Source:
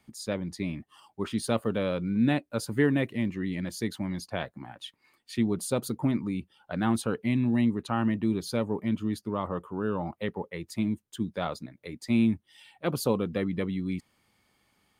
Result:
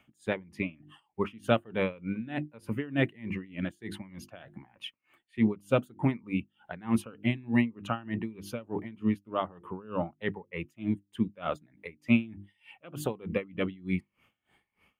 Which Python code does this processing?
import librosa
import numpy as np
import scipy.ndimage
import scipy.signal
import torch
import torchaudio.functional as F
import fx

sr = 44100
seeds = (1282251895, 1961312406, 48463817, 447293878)

y = fx.spec_ripple(x, sr, per_octave=0.88, drift_hz=1.4, depth_db=7)
y = fx.high_shelf_res(y, sr, hz=3500.0, db=-7.5, q=3.0)
y = fx.hum_notches(y, sr, base_hz=50, count=7)
y = y * 10.0 ** (-24 * (0.5 - 0.5 * np.cos(2.0 * np.pi * 3.3 * np.arange(len(y)) / sr)) / 20.0)
y = y * 10.0 ** (3.0 / 20.0)